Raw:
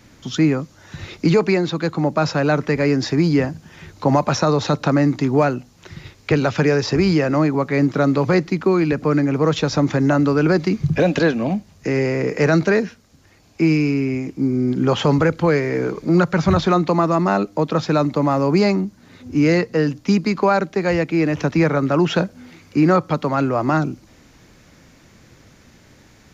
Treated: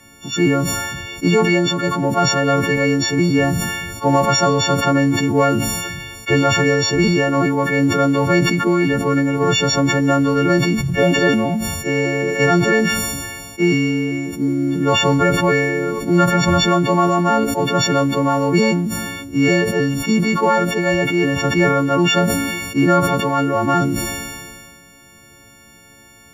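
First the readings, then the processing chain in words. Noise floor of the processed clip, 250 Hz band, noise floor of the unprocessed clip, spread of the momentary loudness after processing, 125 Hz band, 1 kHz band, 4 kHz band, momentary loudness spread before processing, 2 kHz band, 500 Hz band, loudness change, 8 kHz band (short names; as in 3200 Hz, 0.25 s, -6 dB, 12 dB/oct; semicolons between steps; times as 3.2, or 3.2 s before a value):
-46 dBFS, +1.0 dB, -51 dBFS, 7 LU, +0.5 dB, +4.0 dB, +8.5 dB, 6 LU, +6.0 dB, +1.0 dB, +2.0 dB, n/a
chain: frequency quantiser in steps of 4 st; bell 4700 Hz -11.5 dB 0.59 oct; sustainer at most 30 dB/s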